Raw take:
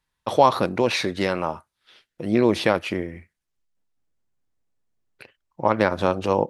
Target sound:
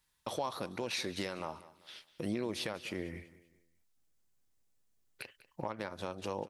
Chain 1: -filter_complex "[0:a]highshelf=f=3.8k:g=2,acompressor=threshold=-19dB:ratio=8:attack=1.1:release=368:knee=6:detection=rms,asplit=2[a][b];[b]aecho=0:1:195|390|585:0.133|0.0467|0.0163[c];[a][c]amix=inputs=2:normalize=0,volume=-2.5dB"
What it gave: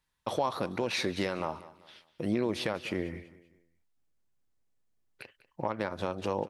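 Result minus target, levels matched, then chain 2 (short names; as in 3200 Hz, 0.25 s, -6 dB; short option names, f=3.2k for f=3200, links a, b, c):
compressor: peak gain reduction -7 dB; 8000 Hz band -5.5 dB
-filter_complex "[0:a]highshelf=f=3.8k:g=11.5,acompressor=threshold=-26.5dB:ratio=8:attack=1.1:release=368:knee=6:detection=rms,asplit=2[a][b];[b]aecho=0:1:195|390|585:0.133|0.0467|0.0163[c];[a][c]amix=inputs=2:normalize=0,volume=-2.5dB"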